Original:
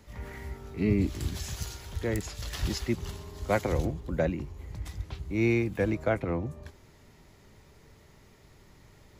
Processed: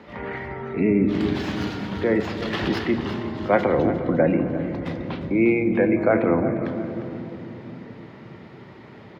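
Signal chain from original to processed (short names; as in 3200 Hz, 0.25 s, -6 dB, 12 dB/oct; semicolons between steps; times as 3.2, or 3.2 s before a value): tracing distortion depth 0.13 ms; HPF 240 Hz 12 dB/oct; spectral gate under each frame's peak -30 dB strong; in parallel at -2 dB: negative-ratio compressor -36 dBFS, ratio -1; on the sum: air absorption 360 m; feedback echo 0.352 s, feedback 36%, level -13 dB; on a send at -8 dB: reverb RT60 3.5 s, pre-delay 3 ms; on the sum: gain +8.5 dB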